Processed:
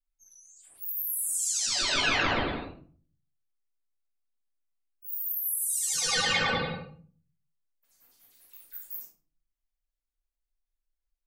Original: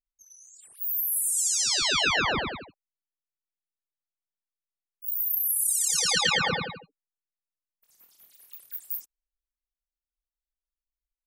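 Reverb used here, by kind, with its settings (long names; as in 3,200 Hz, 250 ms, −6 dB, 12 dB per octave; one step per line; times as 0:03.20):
rectangular room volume 350 cubic metres, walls furnished, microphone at 8.1 metres
level −13.5 dB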